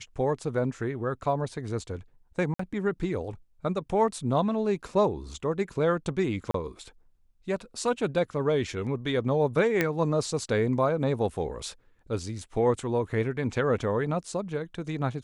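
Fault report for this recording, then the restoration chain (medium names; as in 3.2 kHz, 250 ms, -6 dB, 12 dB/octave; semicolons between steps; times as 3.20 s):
2.54–2.59 s: dropout 54 ms
6.51–6.54 s: dropout 33 ms
9.81 s: pop -10 dBFS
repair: de-click; interpolate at 2.54 s, 54 ms; interpolate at 6.51 s, 33 ms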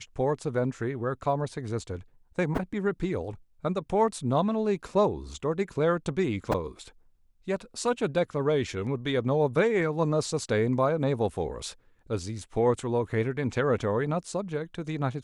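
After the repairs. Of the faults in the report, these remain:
nothing left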